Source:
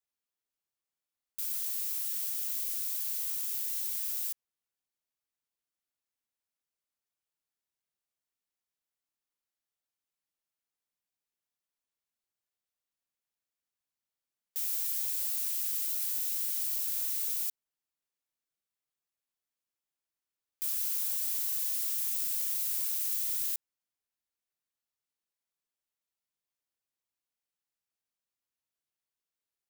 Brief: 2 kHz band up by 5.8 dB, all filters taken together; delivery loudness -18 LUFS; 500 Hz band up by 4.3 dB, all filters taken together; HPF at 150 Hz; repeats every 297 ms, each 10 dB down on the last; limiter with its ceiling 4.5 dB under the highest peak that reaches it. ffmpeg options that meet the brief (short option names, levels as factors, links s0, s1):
-af "highpass=150,equalizer=f=500:t=o:g=5,equalizer=f=2000:t=o:g=7,alimiter=limit=0.0631:level=0:latency=1,aecho=1:1:297|594|891|1188:0.316|0.101|0.0324|0.0104,volume=4.47"